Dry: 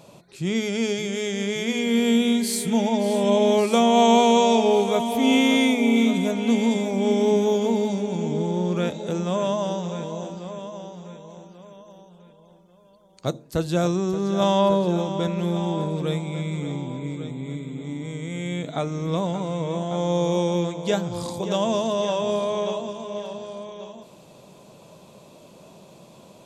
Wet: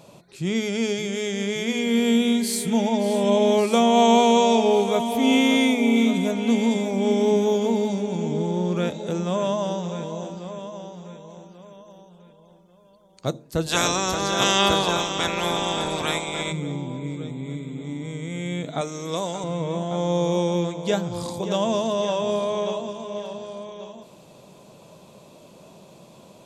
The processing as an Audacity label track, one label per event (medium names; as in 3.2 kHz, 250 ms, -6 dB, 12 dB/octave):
13.660000	16.510000	spectral peaks clipped ceiling under each frame's peak by 26 dB
18.810000	19.440000	tone controls bass -11 dB, treble +11 dB